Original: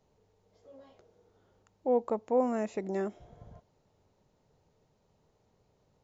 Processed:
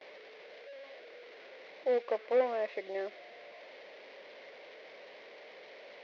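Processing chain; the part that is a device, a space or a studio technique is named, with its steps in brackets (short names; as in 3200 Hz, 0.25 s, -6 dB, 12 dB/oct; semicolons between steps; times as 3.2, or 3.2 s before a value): digital answering machine (BPF 300–3400 Hz; delta modulation 32 kbps, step -45 dBFS; speaker cabinet 490–4500 Hz, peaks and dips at 550 Hz +7 dB, 880 Hz -8 dB, 1300 Hz -8 dB, 2100 Hz +8 dB); gate with hold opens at -43 dBFS; 2.03–2.74 dynamic EQ 1100 Hz, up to +5 dB, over -46 dBFS, Q 0.83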